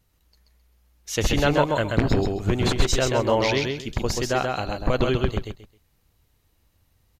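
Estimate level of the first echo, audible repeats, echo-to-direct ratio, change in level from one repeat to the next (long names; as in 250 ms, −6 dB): −3.5 dB, 3, −3.5 dB, −13.0 dB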